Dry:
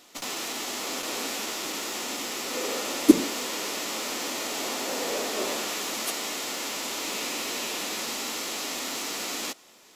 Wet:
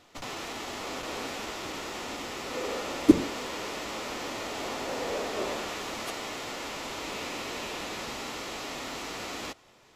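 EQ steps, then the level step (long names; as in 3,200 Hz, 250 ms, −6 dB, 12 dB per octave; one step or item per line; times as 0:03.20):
low-pass filter 2,000 Hz 6 dB per octave
low shelf with overshoot 150 Hz +11.5 dB, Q 1.5
0.0 dB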